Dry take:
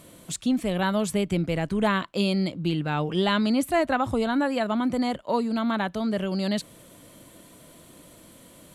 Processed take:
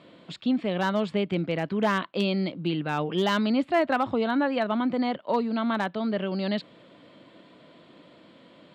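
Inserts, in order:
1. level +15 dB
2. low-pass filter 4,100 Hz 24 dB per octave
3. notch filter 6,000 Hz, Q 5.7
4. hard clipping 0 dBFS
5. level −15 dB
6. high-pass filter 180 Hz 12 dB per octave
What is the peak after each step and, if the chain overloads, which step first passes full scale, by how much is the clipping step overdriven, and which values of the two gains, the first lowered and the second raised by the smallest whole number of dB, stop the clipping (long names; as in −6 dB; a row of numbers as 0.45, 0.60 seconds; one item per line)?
+4.5, +4.5, +4.5, 0.0, −15.0, −11.5 dBFS
step 1, 4.5 dB
step 1 +10 dB, step 5 −10 dB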